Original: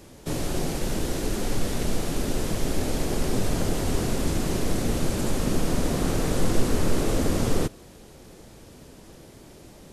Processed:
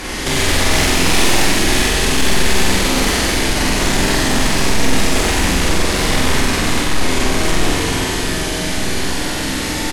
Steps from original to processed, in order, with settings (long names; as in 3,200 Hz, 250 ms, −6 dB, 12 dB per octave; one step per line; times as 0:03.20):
mains-hum notches 60/120/180/240/300/360 Hz
pitch shifter −1.5 semitones
brickwall limiter −17.5 dBFS, peak gain reduction 9.5 dB
compressor whose output falls as the input rises −32 dBFS, ratio −1
four-comb reverb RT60 3.6 s, combs from 27 ms, DRR −6 dB
sine wavefolder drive 11 dB, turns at −11 dBFS
graphic EQ with 10 bands 125 Hz −9 dB, 500 Hz −5 dB, 1,000 Hz +5 dB, 2,000 Hz +9 dB, 4,000 Hz +3 dB
on a send: flutter between parallel walls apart 7.9 metres, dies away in 0.72 s
on the sum: dynamic equaliser 1,200 Hz, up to −5 dB, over −29 dBFS, Q 1.2
level −1 dB